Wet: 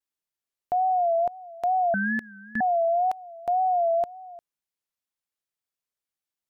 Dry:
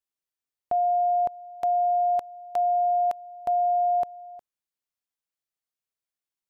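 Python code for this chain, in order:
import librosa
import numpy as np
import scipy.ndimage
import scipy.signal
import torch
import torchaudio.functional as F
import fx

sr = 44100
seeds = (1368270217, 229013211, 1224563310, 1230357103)

y = fx.ring_mod(x, sr, carrier_hz=920.0, at=(1.94, 2.61))
y = fx.wow_flutter(y, sr, seeds[0], rate_hz=2.1, depth_cents=100.0)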